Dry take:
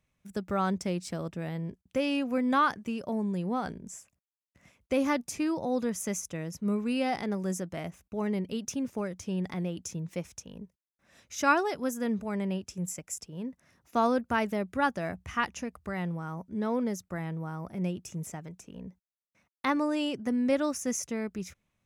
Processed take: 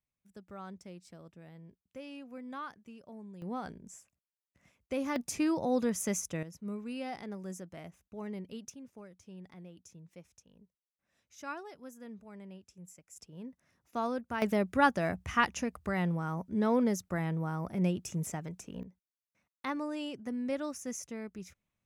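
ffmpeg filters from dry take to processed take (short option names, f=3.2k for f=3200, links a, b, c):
-af "asetnsamples=n=441:p=0,asendcmd='3.42 volume volume -7dB;5.16 volume volume 0dB;6.43 volume volume -10dB;8.7 volume volume -17dB;13.16 volume volume -8dB;14.42 volume volume 2dB;18.83 volume volume -8dB',volume=-17dB"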